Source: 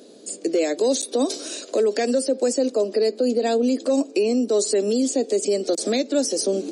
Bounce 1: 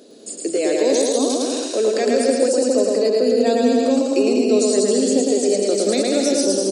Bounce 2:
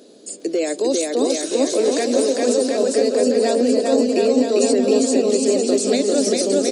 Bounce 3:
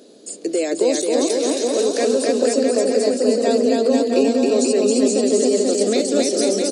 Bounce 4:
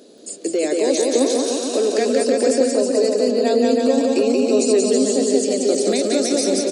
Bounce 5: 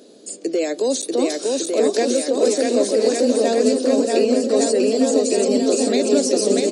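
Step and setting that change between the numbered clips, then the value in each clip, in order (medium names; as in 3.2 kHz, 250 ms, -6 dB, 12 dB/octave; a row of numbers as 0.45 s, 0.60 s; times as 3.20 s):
bouncing-ball echo, first gap: 110 ms, 400 ms, 270 ms, 180 ms, 640 ms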